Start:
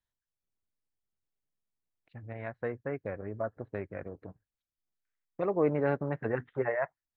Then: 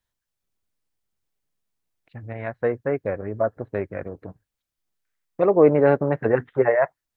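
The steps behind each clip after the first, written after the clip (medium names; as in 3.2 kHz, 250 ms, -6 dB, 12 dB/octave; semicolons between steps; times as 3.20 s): dynamic bell 500 Hz, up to +5 dB, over -38 dBFS, Q 0.85; trim +8 dB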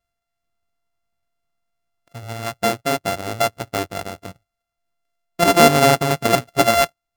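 sorted samples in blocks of 64 samples; trim +3 dB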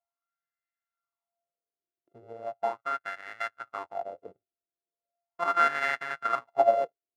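wah-wah 0.38 Hz 350–1800 Hz, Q 5.7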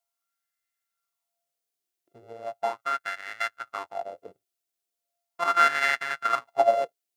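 treble shelf 2.2 kHz +11.5 dB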